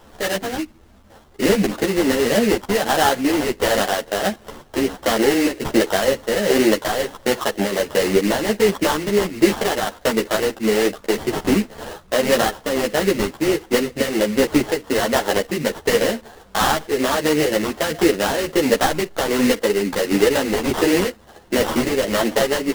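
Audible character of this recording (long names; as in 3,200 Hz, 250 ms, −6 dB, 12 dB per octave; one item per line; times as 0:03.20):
aliases and images of a low sample rate 2,400 Hz, jitter 20%
tremolo triangle 1.4 Hz, depth 45%
a quantiser's noise floor 10 bits, dither none
a shimmering, thickened sound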